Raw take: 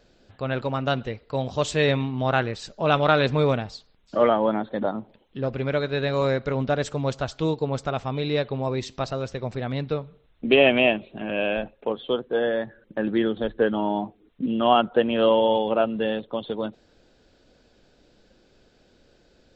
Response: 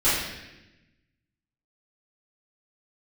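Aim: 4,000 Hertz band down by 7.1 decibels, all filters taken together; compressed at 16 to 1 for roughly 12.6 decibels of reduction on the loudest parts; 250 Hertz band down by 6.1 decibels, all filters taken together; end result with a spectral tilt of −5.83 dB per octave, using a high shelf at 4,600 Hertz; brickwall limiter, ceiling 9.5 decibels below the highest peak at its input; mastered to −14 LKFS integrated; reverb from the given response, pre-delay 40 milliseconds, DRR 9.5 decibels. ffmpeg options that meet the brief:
-filter_complex "[0:a]equalizer=frequency=250:width_type=o:gain=-8,equalizer=frequency=4000:width_type=o:gain=-8.5,highshelf=frequency=4600:gain=-3,acompressor=threshold=-27dB:ratio=16,alimiter=level_in=2.5dB:limit=-24dB:level=0:latency=1,volume=-2.5dB,asplit=2[link_01][link_02];[1:a]atrim=start_sample=2205,adelay=40[link_03];[link_02][link_03]afir=irnorm=-1:irlink=0,volume=-25.5dB[link_04];[link_01][link_04]amix=inputs=2:normalize=0,volume=22.5dB"

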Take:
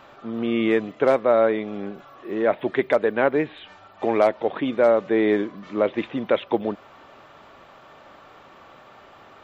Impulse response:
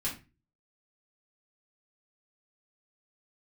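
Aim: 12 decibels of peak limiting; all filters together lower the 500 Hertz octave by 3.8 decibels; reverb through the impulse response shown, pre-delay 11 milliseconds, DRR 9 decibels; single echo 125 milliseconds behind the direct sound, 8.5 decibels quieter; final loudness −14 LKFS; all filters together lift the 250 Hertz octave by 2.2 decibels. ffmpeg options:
-filter_complex "[0:a]equalizer=frequency=250:width_type=o:gain=5,equalizer=frequency=500:width_type=o:gain=-6,alimiter=limit=-18dB:level=0:latency=1,aecho=1:1:125:0.376,asplit=2[link_01][link_02];[1:a]atrim=start_sample=2205,adelay=11[link_03];[link_02][link_03]afir=irnorm=-1:irlink=0,volume=-13dB[link_04];[link_01][link_04]amix=inputs=2:normalize=0,volume=14.5dB"

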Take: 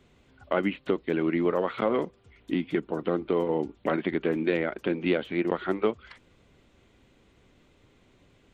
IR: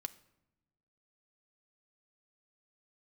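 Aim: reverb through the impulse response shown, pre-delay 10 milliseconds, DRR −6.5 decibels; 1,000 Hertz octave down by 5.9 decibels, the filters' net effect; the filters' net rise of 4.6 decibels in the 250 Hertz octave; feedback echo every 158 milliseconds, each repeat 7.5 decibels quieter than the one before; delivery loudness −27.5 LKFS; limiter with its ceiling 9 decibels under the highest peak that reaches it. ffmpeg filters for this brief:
-filter_complex "[0:a]equalizer=frequency=250:width_type=o:gain=7,equalizer=frequency=1000:width_type=o:gain=-8.5,alimiter=limit=-19dB:level=0:latency=1,aecho=1:1:158|316|474|632|790:0.422|0.177|0.0744|0.0312|0.0131,asplit=2[link_01][link_02];[1:a]atrim=start_sample=2205,adelay=10[link_03];[link_02][link_03]afir=irnorm=-1:irlink=0,volume=9dB[link_04];[link_01][link_04]amix=inputs=2:normalize=0,volume=-4.5dB"

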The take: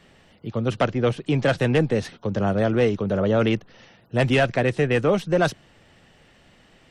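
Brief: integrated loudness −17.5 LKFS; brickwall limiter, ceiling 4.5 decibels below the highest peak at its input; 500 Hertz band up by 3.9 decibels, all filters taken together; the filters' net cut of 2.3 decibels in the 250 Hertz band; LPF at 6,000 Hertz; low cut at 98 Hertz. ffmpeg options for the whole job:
ffmpeg -i in.wav -af "highpass=98,lowpass=6000,equalizer=frequency=250:width_type=o:gain=-4.5,equalizer=frequency=500:width_type=o:gain=5.5,volume=4.5dB,alimiter=limit=-6dB:level=0:latency=1" out.wav

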